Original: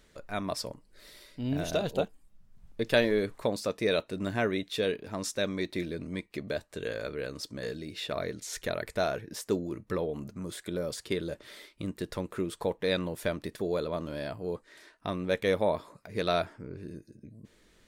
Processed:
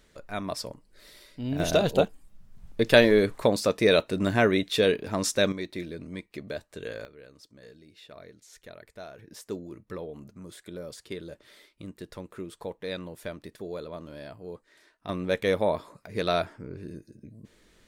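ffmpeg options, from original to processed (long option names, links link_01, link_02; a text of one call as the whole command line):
ffmpeg -i in.wav -af "asetnsamples=nb_out_samples=441:pad=0,asendcmd='1.6 volume volume 7dB;5.52 volume volume -2dB;7.05 volume volume -14dB;9.19 volume volume -6dB;15.09 volume volume 2dB',volume=0.5dB" out.wav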